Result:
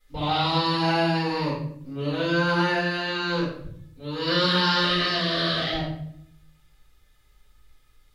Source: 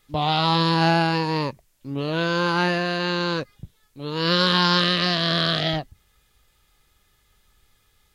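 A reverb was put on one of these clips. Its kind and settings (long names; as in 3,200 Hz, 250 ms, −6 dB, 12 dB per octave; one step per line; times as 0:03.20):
rectangular room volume 120 cubic metres, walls mixed, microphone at 4.8 metres
level −17 dB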